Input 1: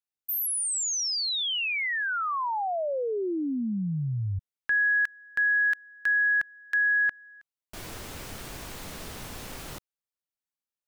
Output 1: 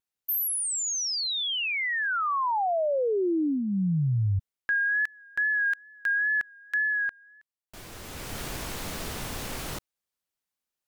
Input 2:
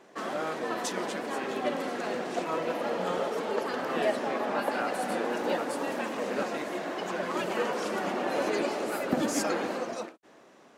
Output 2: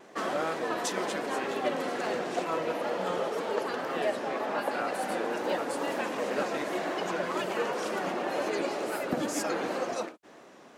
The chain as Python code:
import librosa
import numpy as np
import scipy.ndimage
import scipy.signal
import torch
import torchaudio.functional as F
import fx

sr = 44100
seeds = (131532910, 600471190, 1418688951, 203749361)

y = fx.dynamic_eq(x, sr, hz=230.0, q=4.2, threshold_db=-48.0, ratio=4.0, max_db=-5)
y = fx.rider(y, sr, range_db=5, speed_s=0.5)
y = fx.wow_flutter(y, sr, seeds[0], rate_hz=2.1, depth_cents=48.0)